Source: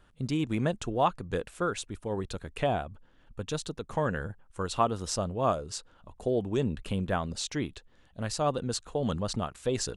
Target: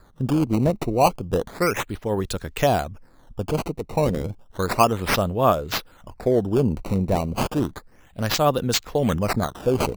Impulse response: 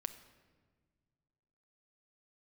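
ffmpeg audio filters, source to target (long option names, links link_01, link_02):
-filter_complex "[0:a]highshelf=frequency=4400:gain=6,acrossover=split=990[link_01][link_02];[link_02]acrusher=samples=15:mix=1:aa=0.000001:lfo=1:lforange=24:lforate=0.32[link_03];[link_01][link_03]amix=inputs=2:normalize=0,volume=8.5dB"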